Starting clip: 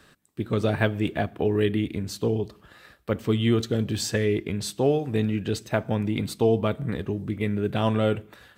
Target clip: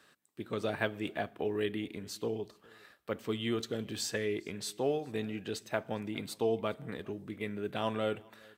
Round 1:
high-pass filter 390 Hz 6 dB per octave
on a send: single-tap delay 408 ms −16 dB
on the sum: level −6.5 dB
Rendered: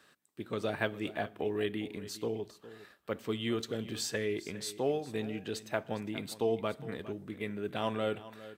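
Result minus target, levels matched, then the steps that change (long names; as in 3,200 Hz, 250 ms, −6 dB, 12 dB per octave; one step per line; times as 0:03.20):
echo-to-direct +10.5 dB
change: single-tap delay 408 ms −26.5 dB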